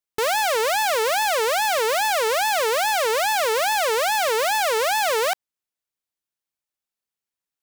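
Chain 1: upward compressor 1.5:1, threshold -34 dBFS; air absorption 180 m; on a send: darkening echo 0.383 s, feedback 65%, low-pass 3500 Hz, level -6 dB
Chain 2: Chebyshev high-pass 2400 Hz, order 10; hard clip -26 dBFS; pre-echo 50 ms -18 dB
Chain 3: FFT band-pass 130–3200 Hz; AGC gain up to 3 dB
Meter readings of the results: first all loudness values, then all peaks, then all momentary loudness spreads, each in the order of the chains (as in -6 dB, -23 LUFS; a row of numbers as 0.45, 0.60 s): -21.5, -28.0, -18.5 LUFS; -12.0, -25.0, -12.5 dBFS; 13, 1, 1 LU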